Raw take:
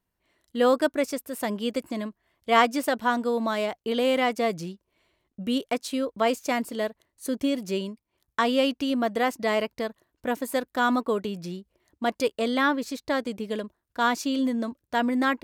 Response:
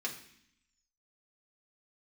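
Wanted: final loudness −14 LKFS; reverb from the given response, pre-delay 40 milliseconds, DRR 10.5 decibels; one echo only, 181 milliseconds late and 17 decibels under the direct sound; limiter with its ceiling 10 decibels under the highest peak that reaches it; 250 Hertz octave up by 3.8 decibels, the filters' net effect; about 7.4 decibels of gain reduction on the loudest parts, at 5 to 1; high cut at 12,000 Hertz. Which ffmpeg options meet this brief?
-filter_complex "[0:a]lowpass=12000,equalizer=frequency=250:width_type=o:gain=4,acompressor=threshold=-23dB:ratio=5,alimiter=limit=-21.5dB:level=0:latency=1,aecho=1:1:181:0.141,asplit=2[link_01][link_02];[1:a]atrim=start_sample=2205,adelay=40[link_03];[link_02][link_03]afir=irnorm=-1:irlink=0,volume=-13dB[link_04];[link_01][link_04]amix=inputs=2:normalize=0,volume=17dB"

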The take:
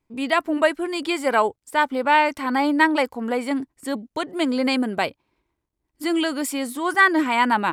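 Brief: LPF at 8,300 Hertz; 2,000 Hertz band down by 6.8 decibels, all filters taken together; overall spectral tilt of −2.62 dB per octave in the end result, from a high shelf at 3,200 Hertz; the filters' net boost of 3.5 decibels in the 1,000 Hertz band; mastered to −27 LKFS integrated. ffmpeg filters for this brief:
ffmpeg -i in.wav -af "lowpass=8300,equalizer=frequency=1000:width_type=o:gain=6.5,equalizer=frequency=2000:width_type=o:gain=-8.5,highshelf=frequency=3200:gain=-8.5,volume=-6dB" out.wav

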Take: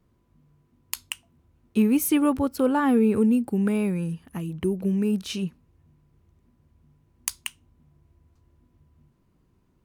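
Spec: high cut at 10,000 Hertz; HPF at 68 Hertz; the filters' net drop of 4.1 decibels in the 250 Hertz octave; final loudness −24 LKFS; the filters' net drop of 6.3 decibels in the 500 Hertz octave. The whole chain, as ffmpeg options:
ffmpeg -i in.wav -af "highpass=68,lowpass=10000,equalizer=frequency=250:width_type=o:gain=-3.5,equalizer=frequency=500:width_type=o:gain=-6.5,volume=5dB" out.wav

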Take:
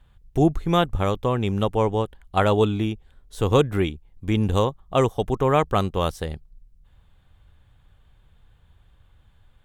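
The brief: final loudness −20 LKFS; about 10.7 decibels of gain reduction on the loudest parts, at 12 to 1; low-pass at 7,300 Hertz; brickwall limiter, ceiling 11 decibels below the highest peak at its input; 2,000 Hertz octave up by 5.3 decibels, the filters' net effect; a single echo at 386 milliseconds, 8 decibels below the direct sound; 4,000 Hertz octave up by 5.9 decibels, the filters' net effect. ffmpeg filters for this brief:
ffmpeg -i in.wav -af "lowpass=7300,equalizer=frequency=2000:width_type=o:gain=5.5,equalizer=frequency=4000:width_type=o:gain=5.5,acompressor=threshold=-23dB:ratio=12,alimiter=limit=-21.5dB:level=0:latency=1,aecho=1:1:386:0.398,volume=13.5dB" out.wav

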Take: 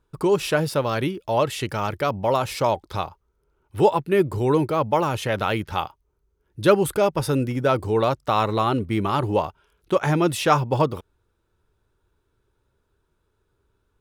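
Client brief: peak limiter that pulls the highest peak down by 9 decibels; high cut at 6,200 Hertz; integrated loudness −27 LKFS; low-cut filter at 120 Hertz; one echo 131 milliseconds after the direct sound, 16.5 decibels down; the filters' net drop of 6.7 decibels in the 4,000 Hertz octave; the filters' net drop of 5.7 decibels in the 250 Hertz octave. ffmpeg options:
ffmpeg -i in.wav -af "highpass=120,lowpass=6200,equalizer=frequency=250:width_type=o:gain=-8.5,equalizer=frequency=4000:width_type=o:gain=-8.5,alimiter=limit=-14dB:level=0:latency=1,aecho=1:1:131:0.15" out.wav

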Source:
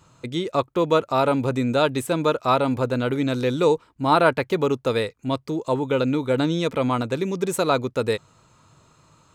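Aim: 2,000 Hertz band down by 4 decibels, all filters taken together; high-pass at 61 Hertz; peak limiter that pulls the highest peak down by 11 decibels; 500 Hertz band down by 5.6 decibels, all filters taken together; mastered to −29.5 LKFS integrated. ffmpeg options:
ffmpeg -i in.wav -af "highpass=61,equalizer=frequency=500:width_type=o:gain=-6.5,equalizer=frequency=2000:width_type=o:gain=-5.5,volume=-0.5dB,alimiter=limit=-19.5dB:level=0:latency=1" out.wav

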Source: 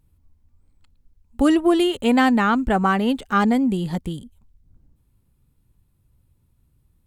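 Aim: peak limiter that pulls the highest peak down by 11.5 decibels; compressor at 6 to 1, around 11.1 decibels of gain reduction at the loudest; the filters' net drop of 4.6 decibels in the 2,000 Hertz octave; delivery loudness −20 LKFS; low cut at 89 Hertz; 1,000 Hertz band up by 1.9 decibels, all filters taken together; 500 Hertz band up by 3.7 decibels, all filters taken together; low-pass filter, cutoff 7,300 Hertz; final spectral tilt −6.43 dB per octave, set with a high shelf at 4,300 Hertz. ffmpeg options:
ffmpeg -i in.wav -af "highpass=89,lowpass=7300,equalizer=frequency=500:width_type=o:gain=5,equalizer=frequency=1000:width_type=o:gain=3,equalizer=frequency=2000:width_type=o:gain=-7.5,highshelf=frequency=4300:gain=-4,acompressor=threshold=-23dB:ratio=6,volume=12dB,alimiter=limit=-12.5dB:level=0:latency=1" out.wav

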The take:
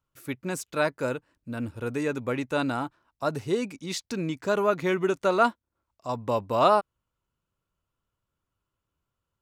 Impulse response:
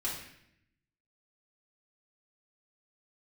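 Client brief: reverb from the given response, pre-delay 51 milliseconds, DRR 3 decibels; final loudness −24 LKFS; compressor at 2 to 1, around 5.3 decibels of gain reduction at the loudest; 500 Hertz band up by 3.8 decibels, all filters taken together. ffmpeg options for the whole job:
-filter_complex "[0:a]equalizer=frequency=500:width_type=o:gain=5,acompressor=threshold=-23dB:ratio=2,asplit=2[link_01][link_02];[1:a]atrim=start_sample=2205,adelay=51[link_03];[link_02][link_03]afir=irnorm=-1:irlink=0,volume=-6.5dB[link_04];[link_01][link_04]amix=inputs=2:normalize=0,volume=2.5dB"

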